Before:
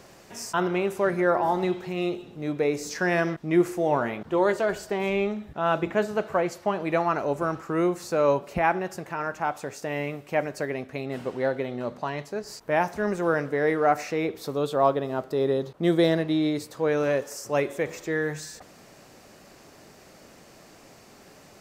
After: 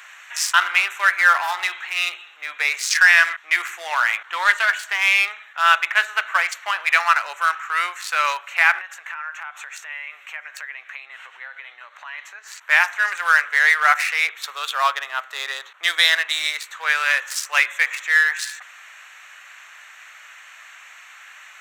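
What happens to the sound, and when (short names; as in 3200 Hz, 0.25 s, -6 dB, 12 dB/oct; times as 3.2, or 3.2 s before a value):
8.81–12.67 compressor 5:1, threshold -38 dBFS
whole clip: Wiener smoothing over 9 samples; HPF 1500 Hz 24 dB/oct; maximiser +20.5 dB; gain -1 dB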